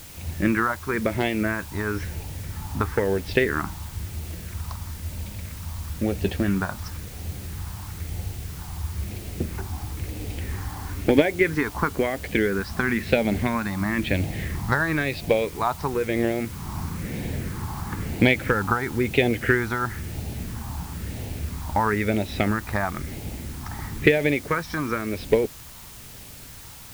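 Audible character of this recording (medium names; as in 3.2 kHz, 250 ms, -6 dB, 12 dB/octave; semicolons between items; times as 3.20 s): phasing stages 4, 1 Hz, lowest notch 480–1200 Hz; a quantiser's noise floor 8-bit, dither triangular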